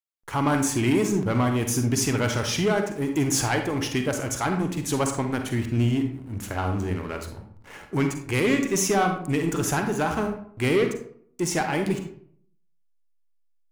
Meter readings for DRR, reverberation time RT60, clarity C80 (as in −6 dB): 5.0 dB, 0.60 s, 10.5 dB